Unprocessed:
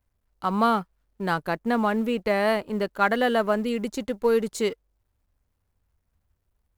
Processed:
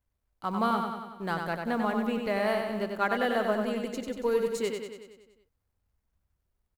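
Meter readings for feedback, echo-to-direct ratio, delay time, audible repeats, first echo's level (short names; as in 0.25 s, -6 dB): 59%, -3.0 dB, 94 ms, 7, -5.0 dB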